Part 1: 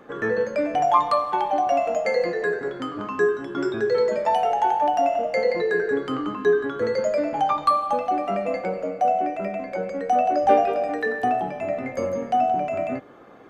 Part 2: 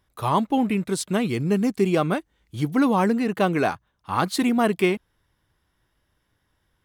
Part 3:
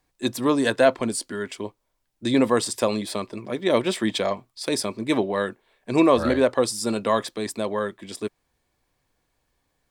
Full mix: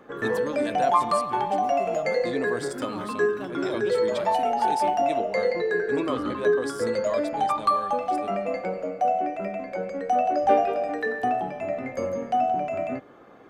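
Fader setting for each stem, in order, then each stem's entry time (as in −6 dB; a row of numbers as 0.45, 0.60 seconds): −2.5, −18.0, −12.0 decibels; 0.00, 0.00, 0.00 seconds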